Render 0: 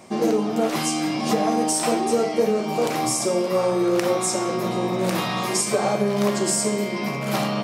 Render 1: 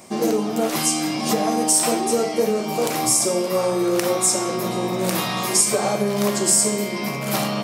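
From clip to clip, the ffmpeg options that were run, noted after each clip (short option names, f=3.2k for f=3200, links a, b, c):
-af "highshelf=f=6.8k:g=12"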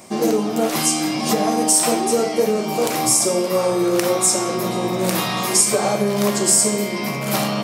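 -af "flanger=delay=9:depth=7.8:regen=-88:speed=0.88:shape=triangular,volume=6.5dB"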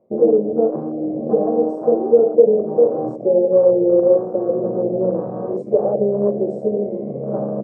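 -af "afwtdn=0.1,lowpass=f=510:t=q:w=4.9,volume=-4dB"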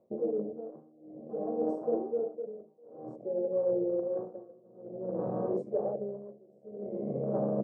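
-af "areverse,acompressor=threshold=-22dB:ratio=10,areverse,tremolo=f=0.54:d=0.97,volume=-4dB"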